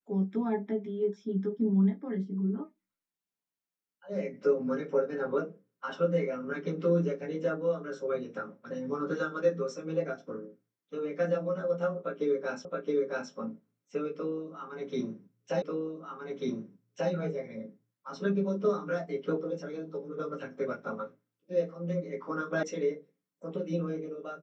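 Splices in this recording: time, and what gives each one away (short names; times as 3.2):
12.65 repeat of the last 0.67 s
15.62 repeat of the last 1.49 s
22.63 sound cut off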